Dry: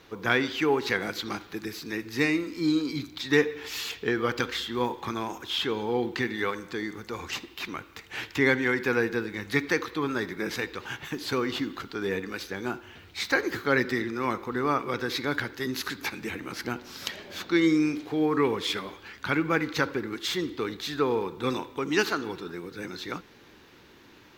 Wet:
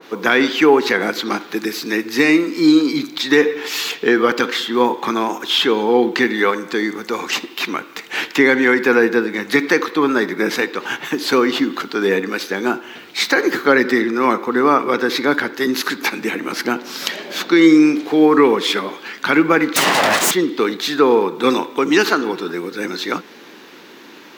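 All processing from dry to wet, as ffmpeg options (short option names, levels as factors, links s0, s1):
-filter_complex "[0:a]asettb=1/sr,asplit=3[s0][s1][s2];[s0]atrim=end=19.764[s3];[s1]atrim=start=19.76:end=20.31,asetpts=PTS-STARTPTS,afade=t=in:d=0.004:c=qsin,afade=t=out:st=0.546:d=0.004:c=qsin,asplit=2[s4][s5];[s5]highpass=f=720:p=1,volume=35.5,asoftclip=type=tanh:threshold=0.355[s6];[s4][s6]amix=inputs=2:normalize=0,lowpass=f=5400:p=1,volume=0.501,aeval=exprs='abs(val(0))':c=same[s7];[s2]atrim=start=20.306[s8];[s3][s7]acrossfade=d=0.004:c1=hsin:c2=qsin[s9];[s9][s8]acrossfade=d=0.004:c1=qsin:c2=hsin,highpass=f=200:w=0.5412,highpass=f=200:w=1.3066,alimiter=level_in=5.31:limit=0.891:release=50:level=0:latency=1,adynamicequalizer=threshold=0.0501:dfrequency=2000:dqfactor=0.7:tfrequency=2000:tqfactor=0.7:attack=5:release=100:ratio=0.375:range=2.5:mode=cutabove:tftype=highshelf,volume=0.891"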